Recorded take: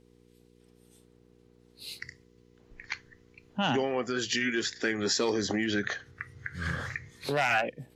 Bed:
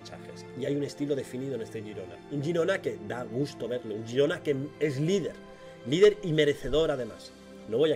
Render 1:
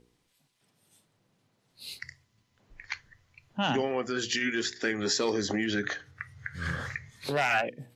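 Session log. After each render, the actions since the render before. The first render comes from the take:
hum removal 60 Hz, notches 8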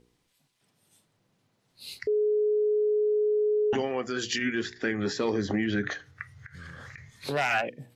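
0:02.07–0:03.73: beep over 422 Hz −21.5 dBFS
0:04.38–0:05.91: bass and treble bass +6 dB, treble −12 dB
0:06.41–0:06.98: downward compressor, threshold −41 dBFS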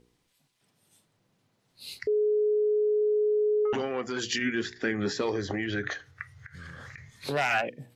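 0:02.54–0:03.02: low-pass filter 2,600 Hz 6 dB per octave
0:03.65–0:04.20: saturating transformer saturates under 560 Hz
0:05.21–0:06.54: parametric band 220 Hz −9 dB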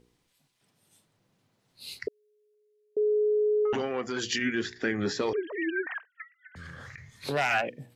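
0:02.08–0:02.97: high-pass filter 1,500 Hz 24 dB per octave
0:05.33–0:06.56: three sine waves on the formant tracks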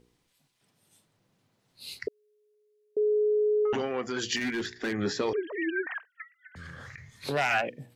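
0:04.36–0:04.93: hard clipping −26.5 dBFS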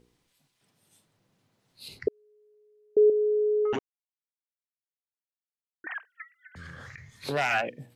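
0:01.88–0:03.10: tilt shelving filter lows +9 dB, about 1,300 Hz
0:03.79–0:05.84: silence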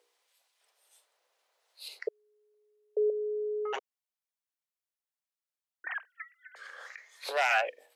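Butterworth high-pass 490 Hz 36 dB per octave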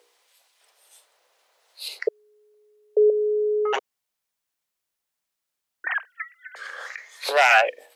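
level +10.5 dB

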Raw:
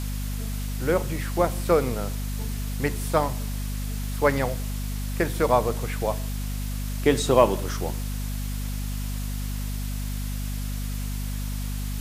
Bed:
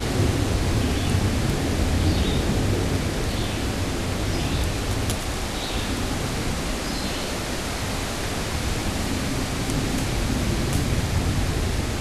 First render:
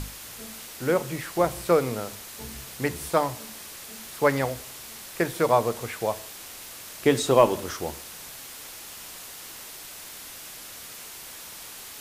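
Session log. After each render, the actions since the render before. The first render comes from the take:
mains-hum notches 50/100/150/200/250 Hz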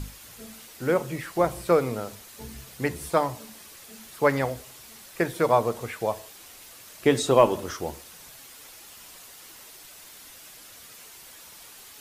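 broadband denoise 7 dB, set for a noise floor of −42 dBFS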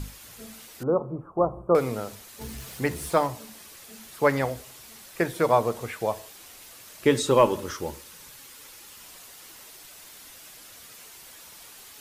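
0:00.83–0:01.75: elliptic low-pass filter 1,200 Hz
0:02.41–0:03.27: mu-law and A-law mismatch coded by mu
0:07.05–0:09.02: Butterworth band-reject 700 Hz, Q 4.9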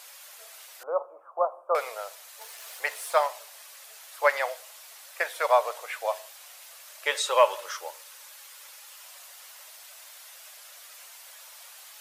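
elliptic high-pass filter 570 Hz, stop band 70 dB
dynamic equaliser 2,600 Hz, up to +4 dB, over −39 dBFS, Q 0.71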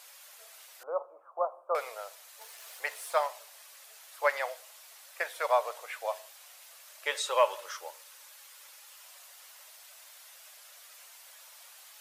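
level −5 dB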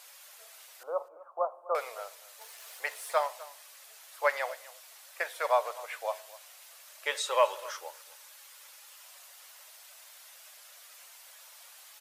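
single-tap delay 251 ms −19.5 dB

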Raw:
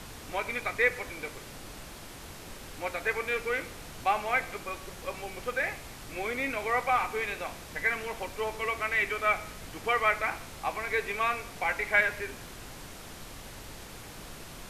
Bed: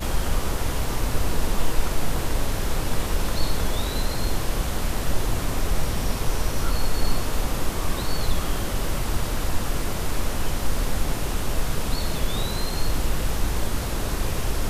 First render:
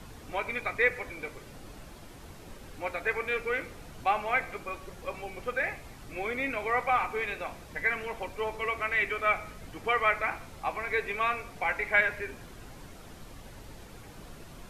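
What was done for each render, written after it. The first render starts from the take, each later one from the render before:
broadband denoise 8 dB, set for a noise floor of −45 dBFS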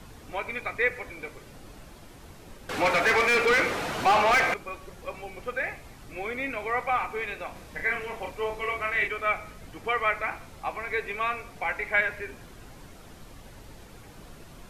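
0:02.69–0:04.54: mid-hump overdrive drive 30 dB, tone 2,500 Hz, clips at −13 dBFS
0:07.52–0:09.08: double-tracking delay 34 ms −3.5 dB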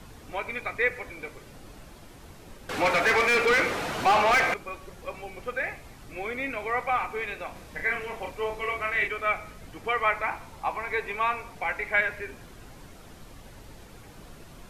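0:10.03–0:11.55: parametric band 930 Hz +8.5 dB 0.34 octaves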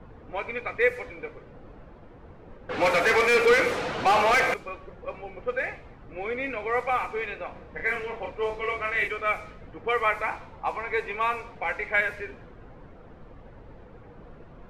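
low-pass that shuts in the quiet parts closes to 1,200 Hz, open at −22 dBFS
parametric band 490 Hz +7 dB 0.23 octaves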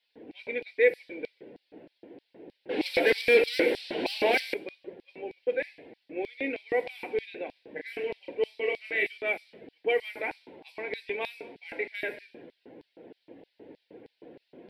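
auto-filter high-pass square 3.2 Hz 320–4,600 Hz
phaser with its sweep stopped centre 2,900 Hz, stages 4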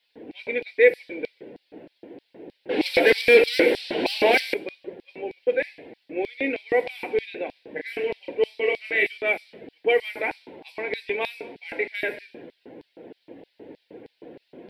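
level +6 dB

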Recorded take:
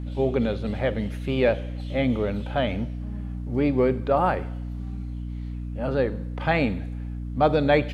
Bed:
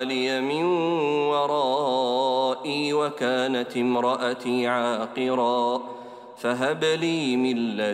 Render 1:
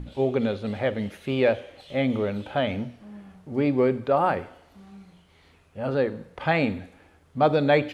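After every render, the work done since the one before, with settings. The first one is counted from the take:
mains-hum notches 60/120/180/240/300 Hz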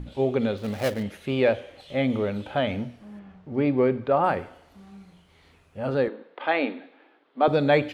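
0:00.57–0:01.03: gap after every zero crossing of 0.15 ms
0:03.19–0:04.24: low-pass filter 3,700 Hz
0:06.08–0:07.48: elliptic band-pass filter 280–3,800 Hz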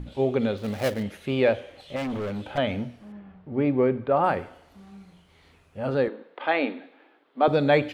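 0:01.96–0:02.58: hard clipping −27.5 dBFS
0:03.12–0:04.16: high-frequency loss of the air 190 metres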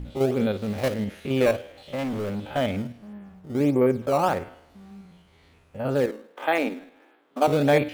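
spectrum averaged block by block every 50 ms
in parallel at −11 dB: sample-and-hold swept by an LFO 15×, swing 160% 1.5 Hz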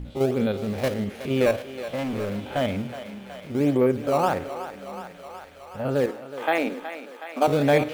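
feedback echo with a high-pass in the loop 370 ms, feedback 80%, high-pass 420 Hz, level −11 dB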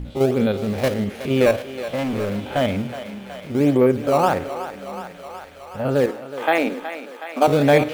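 level +4.5 dB

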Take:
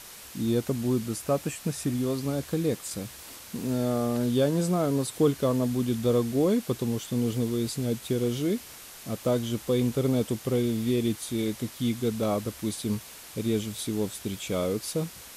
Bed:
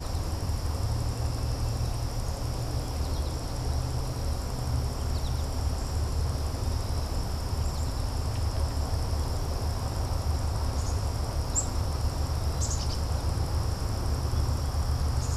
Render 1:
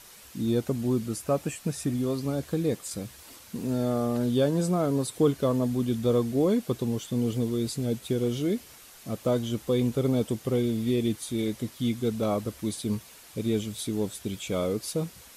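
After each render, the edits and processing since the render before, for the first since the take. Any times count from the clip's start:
broadband denoise 6 dB, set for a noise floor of −46 dBFS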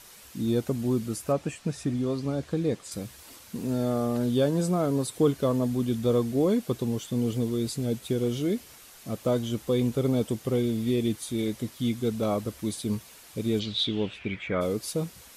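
0:01.32–0:02.92: high-frequency loss of the air 56 metres
0:13.59–0:14.60: low-pass with resonance 4,500 Hz → 1,700 Hz, resonance Q 7.3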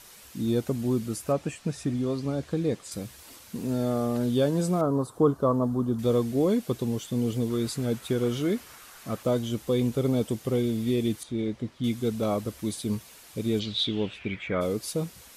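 0:04.81–0:05.99: high shelf with overshoot 1,600 Hz −11 dB, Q 3
0:07.50–0:09.23: parametric band 1,300 Hz +8.5 dB 1.3 octaves
0:11.23–0:11.84: head-to-tape spacing loss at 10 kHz 20 dB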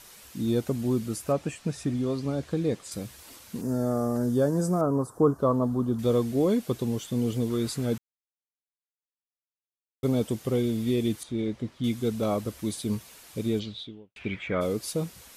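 0:03.61–0:05.39: flat-topped bell 3,000 Hz −14 dB 1.2 octaves
0:07.98–0:10.03: silence
0:13.39–0:14.16: fade out and dull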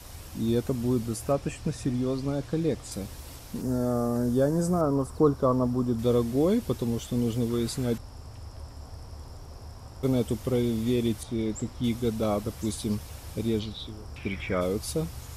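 mix in bed −13.5 dB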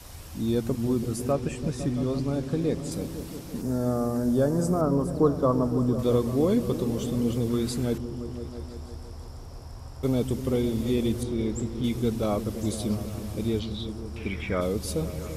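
echo whose low-pass opens from repeat to repeat 168 ms, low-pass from 200 Hz, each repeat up 1 octave, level −6 dB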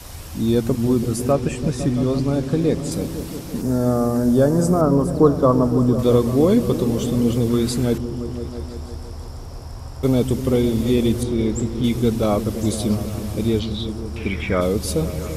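level +7.5 dB

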